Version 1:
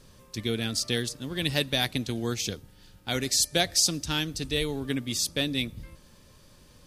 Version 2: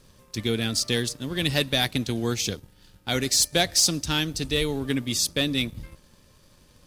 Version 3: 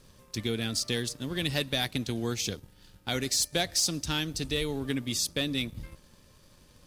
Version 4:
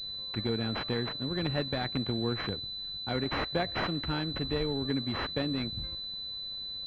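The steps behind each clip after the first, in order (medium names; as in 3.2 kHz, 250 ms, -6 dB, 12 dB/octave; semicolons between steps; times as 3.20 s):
waveshaping leveller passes 1
compression 1.5:1, threshold -31 dBFS, peak gain reduction 5.5 dB; trim -1.5 dB
class-D stage that switches slowly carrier 4 kHz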